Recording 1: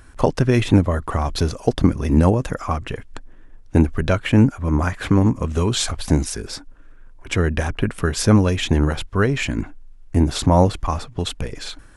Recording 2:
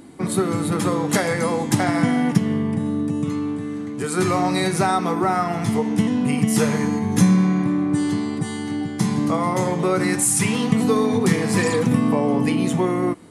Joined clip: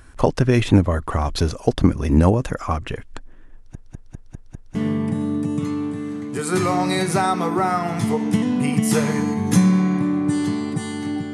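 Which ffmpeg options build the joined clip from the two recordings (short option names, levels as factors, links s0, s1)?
-filter_complex "[0:a]apad=whole_dur=11.33,atrim=end=11.33,asplit=6[s0][s1][s2][s3][s4][s5];[s0]atrim=end=3.752[s6];[s1]atrim=start=3.548:end=3.752[s7];[s2]atrim=start=3.548:end=3.752[s8];[s3]atrim=start=3.548:end=3.752[s9];[s4]atrim=start=3.548:end=3.752[s10];[s5]atrim=start=3.548:end=3.752[s11];[1:a]atrim=start=2.398:end=8.98[s12];[s6][s7]acrossfade=d=0.004:c1=hsin:c2=hsin[s13];[s13][s8]acrossfade=d=0.004:c1=hsin:c2=hsin[s14];[s14][s9]acrossfade=d=0.004:c1=hsin:c2=hsin[s15];[s15][s10]acrossfade=d=0.004:c1=hsin:c2=hsin[s16];[s16][s11]acrossfade=d=0.004:c1=hsin:c2=hsin[s17];[s17][s12]acrossfade=d=0.004:c1=hsin:c2=hsin"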